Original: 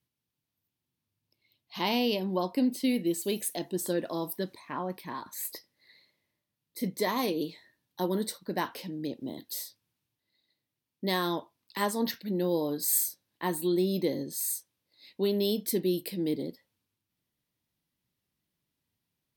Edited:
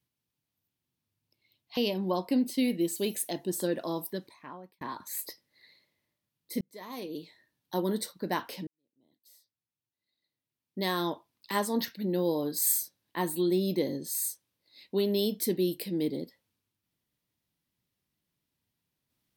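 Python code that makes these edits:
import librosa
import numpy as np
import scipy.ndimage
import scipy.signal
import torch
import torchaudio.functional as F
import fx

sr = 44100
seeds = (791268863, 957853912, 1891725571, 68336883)

y = fx.edit(x, sr, fx.cut(start_s=1.77, length_s=0.26),
    fx.fade_out_span(start_s=4.18, length_s=0.89),
    fx.fade_in_span(start_s=6.87, length_s=1.2),
    fx.fade_in_span(start_s=8.93, length_s=2.4, curve='qua'), tone=tone)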